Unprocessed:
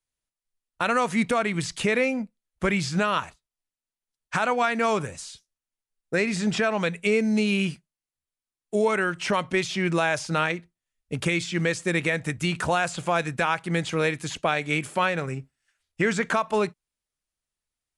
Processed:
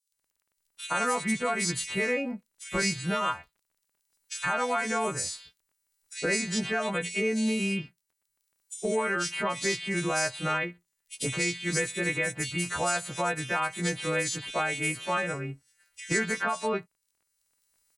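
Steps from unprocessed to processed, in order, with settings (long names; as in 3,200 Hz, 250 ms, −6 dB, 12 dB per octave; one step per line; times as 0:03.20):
every partial snapped to a pitch grid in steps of 2 semitones
camcorder AGC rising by 11 dB per second
surface crackle 18 per second −47 dBFS
multiband delay without the direct sound highs, lows 120 ms, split 3,200 Hz
level −5 dB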